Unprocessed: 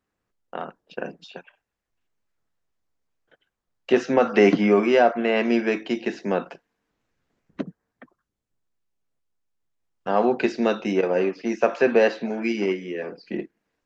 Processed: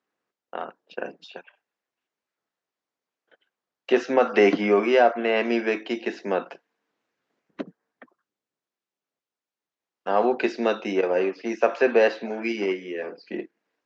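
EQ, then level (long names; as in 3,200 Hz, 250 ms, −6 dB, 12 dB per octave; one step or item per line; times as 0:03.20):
band-pass filter 290–6,200 Hz
0.0 dB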